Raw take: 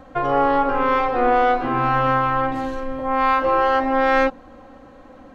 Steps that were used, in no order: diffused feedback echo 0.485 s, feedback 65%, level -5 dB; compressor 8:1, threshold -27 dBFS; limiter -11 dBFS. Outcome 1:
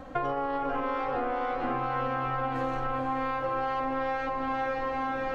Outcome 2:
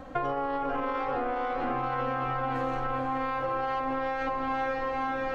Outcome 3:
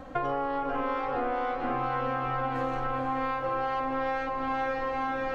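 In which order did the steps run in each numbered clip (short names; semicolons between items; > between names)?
limiter > diffused feedback echo > compressor; diffused feedback echo > limiter > compressor; diffused feedback echo > compressor > limiter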